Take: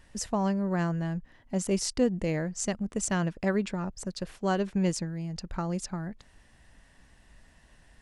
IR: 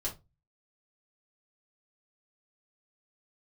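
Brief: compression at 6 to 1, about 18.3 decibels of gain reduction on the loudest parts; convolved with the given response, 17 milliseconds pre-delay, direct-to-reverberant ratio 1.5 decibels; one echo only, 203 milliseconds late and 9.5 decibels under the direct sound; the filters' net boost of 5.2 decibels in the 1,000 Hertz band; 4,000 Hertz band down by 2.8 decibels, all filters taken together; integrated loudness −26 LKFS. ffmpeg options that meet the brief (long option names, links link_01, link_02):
-filter_complex "[0:a]equalizer=frequency=1000:width_type=o:gain=7,equalizer=frequency=4000:width_type=o:gain=-4.5,acompressor=threshold=-40dB:ratio=6,aecho=1:1:203:0.335,asplit=2[link_01][link_02];[1:a]atrim=start_sample=2205,adelay=17[link_03];[link_02][link_03]afir=irnorm=-1:irlink=0,volume=-3.5dB[link_04];[link_01][link_04]amix=inputs=2:normalize=0,volume=14dB"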